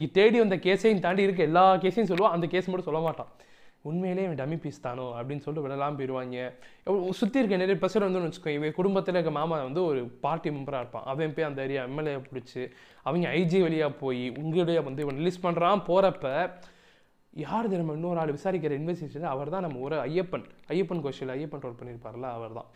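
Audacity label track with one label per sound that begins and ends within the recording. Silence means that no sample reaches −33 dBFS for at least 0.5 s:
3.850000	16.490000	sound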